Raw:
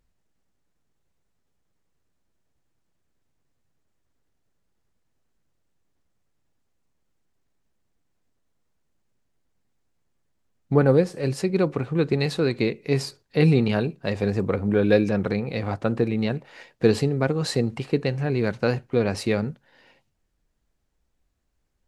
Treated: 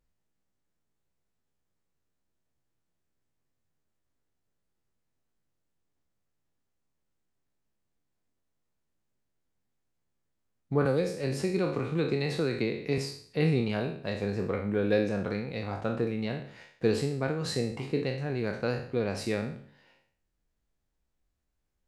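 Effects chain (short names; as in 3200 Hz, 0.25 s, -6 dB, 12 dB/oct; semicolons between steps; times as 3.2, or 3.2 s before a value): spectral trails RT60 0.55 s; 10.85–12.98 three-band squash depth 70%; gain -8.5 dB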